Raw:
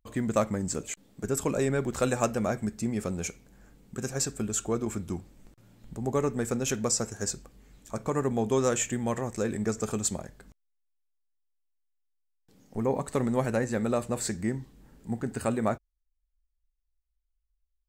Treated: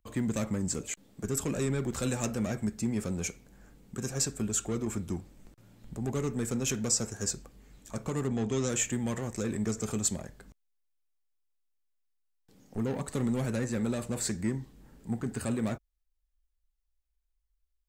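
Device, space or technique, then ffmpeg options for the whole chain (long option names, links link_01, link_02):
one-band saturation: -filter_complex "[0:a]asettb=1/sr,asplit=3[link_01][link_02][link_03];[link_01]atrim=end=8.274[link_04];[link_02]atrim=start=8.27:end=8.69,asetpts=PTS-STARTPTS,afade=type=in:duration=0.004:curve=qsin,afade=type=out:start_time=0.416:duration=0.004:curve=qsin,lowpass=frequency=7700:width=0.5412,lowpass=frequency=7700:width=1.3066[link_05];[link_03]atrim=start=8.686[link_06];[link_04][link_05]acrossfade=duration=0.004:curve1=hsin:curve2=qsin[link_07];[link_07][link_06]acrossfade=duration=0.004:curve1=qsin:curve2=hsin,acrossover=split=310|2200[link_08][link_09][link_10];[link_09]asoftclip=type=tanh:threshold=-36.5dB[link_11];[link_08][link_11][link_10]amix=inputs=3:normalize=0"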